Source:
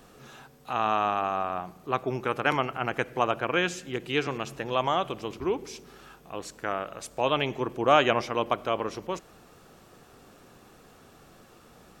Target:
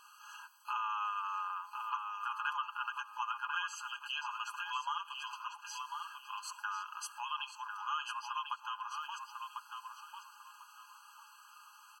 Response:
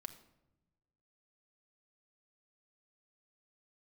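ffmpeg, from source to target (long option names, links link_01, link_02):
-filter_complex "[0:a]aecho=1:1:4.9:0.65,acompressor=threshold=-32dB:ratio=4,asplit=2[link_01][link_02];[link_02]adelay=1047,lowpass=frequency=4100:poles=1,volume=-5dB,asplit=2[link_03][link_04];[link_04]adelay=1047,lowpass=frequency=4100:poles=1,volume=0.26,asplit=2[link_05][link_06];[link_06]adelay=1047,lowpass=frequency=4100:poles=1,volume=0.26[link_07];[link_01][link_03][link_05][link_07]amix=inputs=4:normalize=0,afftfilt=real='re*eq(mod(floor(b*sr/1024/820),2),1)':imag='im*eq(mod(floor(b*sr/1024/820),2),1)':win_size=1024:overlap=0.75"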